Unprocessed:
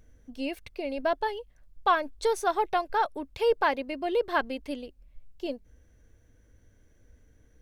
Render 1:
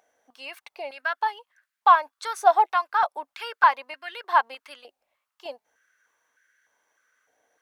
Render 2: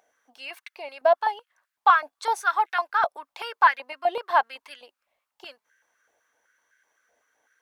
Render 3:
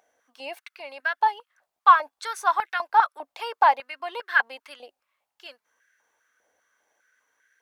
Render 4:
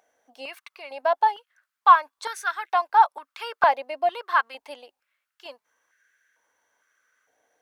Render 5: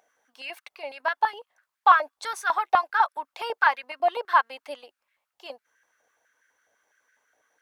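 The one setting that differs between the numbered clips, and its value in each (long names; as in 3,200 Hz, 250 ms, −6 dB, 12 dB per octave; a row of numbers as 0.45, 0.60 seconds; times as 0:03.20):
high-pass on a step sequencer, speed: 3.3, 7.9, 5, 2.2, 12 Hertz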